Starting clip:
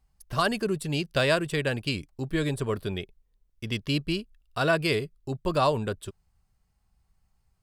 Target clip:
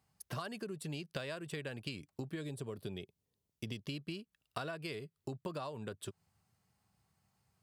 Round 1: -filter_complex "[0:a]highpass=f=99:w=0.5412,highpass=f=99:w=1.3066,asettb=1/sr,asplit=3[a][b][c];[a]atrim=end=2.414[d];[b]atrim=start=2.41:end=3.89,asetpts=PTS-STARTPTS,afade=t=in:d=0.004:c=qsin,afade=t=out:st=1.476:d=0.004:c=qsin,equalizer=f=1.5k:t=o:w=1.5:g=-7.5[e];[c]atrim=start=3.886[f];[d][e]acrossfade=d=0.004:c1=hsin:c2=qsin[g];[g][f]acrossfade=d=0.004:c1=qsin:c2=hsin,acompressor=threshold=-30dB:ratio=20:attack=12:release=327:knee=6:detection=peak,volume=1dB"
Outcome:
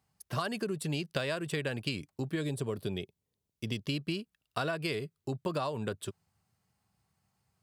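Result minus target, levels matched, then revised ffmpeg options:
compressor: peak gain reduction -8.5 dB
-filter_complex "[0:a]highpass=f=99:w=0.5412,highpass=f=99:w=1.3066,asettb=1/sr,asplit=3[a][b][c];[a]atrim=end=2.414[d];[b]atrim=start=2.41:end=3.89,asetpts=PTS-STARTPTS,afade=t=in:d=0.004:c=qsin,afade=t=out:st=1.476:d=0.004:c=qsin,equalizer=f=1.5k:t=o:w=1.5:g=-7.5[e];[c]atrim=start=3.886[f];[d][e]acrossfade=d=0.004:c1=hsin:c2=qsin[g];[g][f]acrossfade=d=0.004:c1=qsin:c2=hsin,acompressor=threshold=-39dB:ratio=20:attack=12:release=327:knee=6:detection=peak,volume=1dB"

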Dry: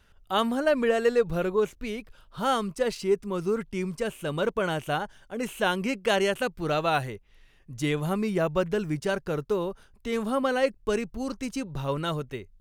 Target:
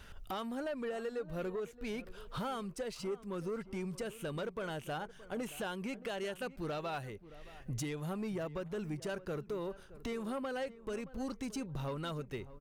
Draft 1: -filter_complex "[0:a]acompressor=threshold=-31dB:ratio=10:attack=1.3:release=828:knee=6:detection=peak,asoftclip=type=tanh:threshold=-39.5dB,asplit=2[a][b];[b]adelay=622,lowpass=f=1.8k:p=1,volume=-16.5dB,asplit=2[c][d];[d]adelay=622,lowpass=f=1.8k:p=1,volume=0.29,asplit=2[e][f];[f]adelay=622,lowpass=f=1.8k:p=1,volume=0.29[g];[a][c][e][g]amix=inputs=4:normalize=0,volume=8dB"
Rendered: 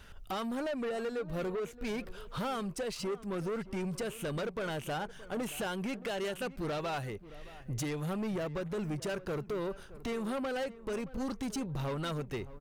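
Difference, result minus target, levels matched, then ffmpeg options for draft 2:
compressor: peak gain reduction -7 dB
-filter_complex "[0:a]acompressor=threshold=-38.5dB:ratio=10:attack=1.3:release=828:knee=6:detection=peak,asoftclip=type=tanh:threshold=-39.5dB,asplit=2[a][b];[b]adelay=622,lowpass=f=1.8k:p=1,volume=-16.5dB,asplit=2[c][d];[d]adelay=622,lowpass=f=1.8k:p=1,volume=0.29,asplit=2[e][f];[f]adelay=622,lowpass=f=1.8k:p=1,volume=0.29[g];[a][c][e][g]amix=inputs=4:normalize=0,volume=8dB"

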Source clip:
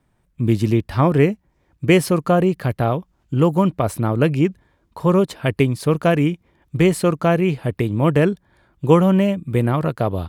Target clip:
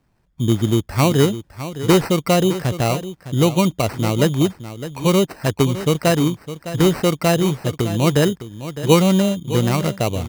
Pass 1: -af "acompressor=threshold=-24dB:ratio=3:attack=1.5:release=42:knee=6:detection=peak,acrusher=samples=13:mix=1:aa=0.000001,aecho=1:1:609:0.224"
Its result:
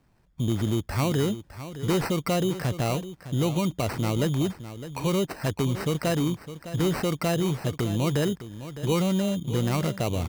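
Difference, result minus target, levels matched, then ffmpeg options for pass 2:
compressor: peak gain reduction +13 dB
-af "acrusher=samples=13:mix=1:aa=0.000001,aecho=1:1:609:0.224"

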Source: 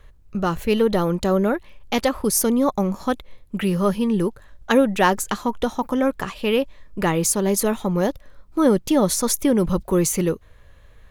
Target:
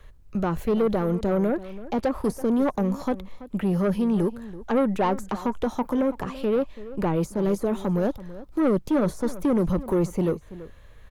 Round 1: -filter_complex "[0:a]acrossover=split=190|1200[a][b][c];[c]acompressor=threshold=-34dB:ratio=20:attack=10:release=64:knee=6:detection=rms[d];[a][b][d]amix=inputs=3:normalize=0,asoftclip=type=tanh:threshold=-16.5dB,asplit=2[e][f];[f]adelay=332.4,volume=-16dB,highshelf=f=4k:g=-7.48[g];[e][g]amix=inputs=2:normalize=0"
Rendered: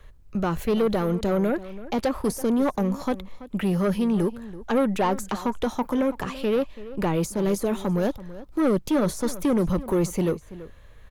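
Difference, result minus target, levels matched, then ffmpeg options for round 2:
compressor: peak gain reduction -9 dB
-filter_complex "[0:a]acrossover=split=190|1200[a][b][c];[c]acompressor=threshold=-43.5dB:ratio=20:attack=10:release=64:knee=6:detection=rms[d];[a][b][d]amix=inputs=3:normalize=0,asoftclip=type=tanh:threshold=-16.5dB,asplit=2[e][f];[f]adelay=332.4,volume=-16dB,highshelf=f=4k:g=-7.48[g];[e][g]amix=inputs=2:normalize=0"

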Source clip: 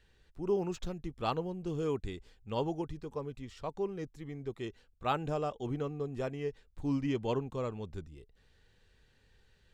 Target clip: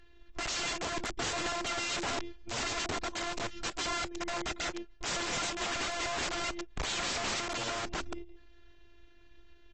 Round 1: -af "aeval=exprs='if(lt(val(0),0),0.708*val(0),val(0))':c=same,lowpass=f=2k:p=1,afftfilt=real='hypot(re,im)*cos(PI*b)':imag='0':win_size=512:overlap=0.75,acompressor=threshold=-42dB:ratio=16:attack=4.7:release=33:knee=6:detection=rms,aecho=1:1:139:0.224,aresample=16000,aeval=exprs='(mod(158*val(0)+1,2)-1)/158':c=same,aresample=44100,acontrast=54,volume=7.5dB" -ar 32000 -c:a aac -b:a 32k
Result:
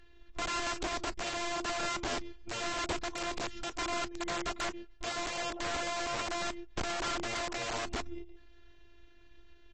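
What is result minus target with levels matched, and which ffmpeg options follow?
compressor: peak gain reduction +14 dB
-af "aeval=exprs='if(lt(val(0),0),0.708*val(0),val(0))':c=same,lowpass=f=2k:p=1,afftfilt=real='hypot(re,im)*cos(PI*b)':imag='0':win_size=512:overlap=0.75,aecho=1:1:139:0.224,aresample=16000,aeval=exprs='(mod(158*val(0)+1,2)-1)/158':c=same,aresample=44100,acontrast=54,volume=7.5dB" -ar 32000 -c:a aac -b:a 32k

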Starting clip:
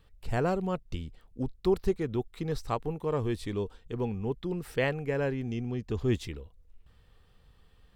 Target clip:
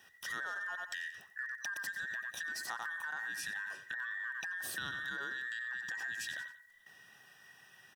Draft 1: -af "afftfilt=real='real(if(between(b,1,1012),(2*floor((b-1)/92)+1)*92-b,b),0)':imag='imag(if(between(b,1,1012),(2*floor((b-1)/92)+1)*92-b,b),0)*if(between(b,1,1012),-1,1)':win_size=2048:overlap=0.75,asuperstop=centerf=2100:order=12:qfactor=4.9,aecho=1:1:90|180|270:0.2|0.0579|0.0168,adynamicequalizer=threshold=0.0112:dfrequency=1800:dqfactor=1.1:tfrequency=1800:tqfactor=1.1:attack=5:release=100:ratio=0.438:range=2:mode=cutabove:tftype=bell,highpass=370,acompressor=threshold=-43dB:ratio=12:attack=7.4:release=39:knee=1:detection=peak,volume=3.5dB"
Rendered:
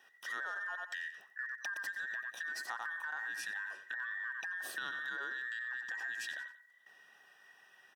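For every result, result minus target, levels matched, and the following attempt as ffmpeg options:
125 Hz band -13.5 dB; 8000 Hz band -4.5 dB
-af "afftfilt=real='real(if(between(b,1,1012),(2*floor((b-1)/92)+1)*92-b,b),0)':imag='imag(if(between(b,1,1012),(2*floor((b-1)/92)+1)*92-b,b),0)*if(between(b,1,1012),-1,1)':win_size=2048:overlap=0.75,asuperstop=centerf=2100:order=12:qfactor=4.9,aecho=1:1:90|180|270:0.2|0.0579|0.0168,adynamicequalizer=threshold=0.0112:dfrequency=1800:dqfactor=1.1:tfrequency=1800:tqfactor=1.1:attack=5:release=100:ratio=0.438:range=2:mode=cutabove:tftype=bell,highpass=100,acompressor=threshold=-43dB:ratio=12:attack=7.4:release=39:knee=1:detection=peak,volume=3.5dB"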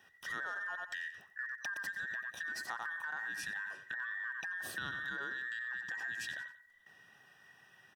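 8000 Hz band -4.5 dB
-af "afftfilt=real='real(if(between(b,1,1012),(2*floor((b-1)/92)+1)*92-b,b),0)':imag='imag(if(between(b,1,1012),(2*floor((b-1)/92)+1)*92-b,b),0)*if(between(b,1,1012),-1,1)':win_size=2048:overlap=0.75,asuperstop=centerf=2100:order=12:qfactor=4.9,highshelf=f=3.6k:g=9.5,aecho=1:1:90|180|270:0.2|0.0579|0.0168,adynamicequalizer=threshold=0.0112:dfrequency=1800:dqfactor=1.1:tfrequency=1800:tqfactor=1.1:attack=5:release=100:ratio=0.438:range=2:mode=cutabove:tftype=bell,highpass=100,acompressor=threshold=-43dB:ratio=12:attack=7.4:release=39:knee=1:detection=peak,volume=3.5dB"

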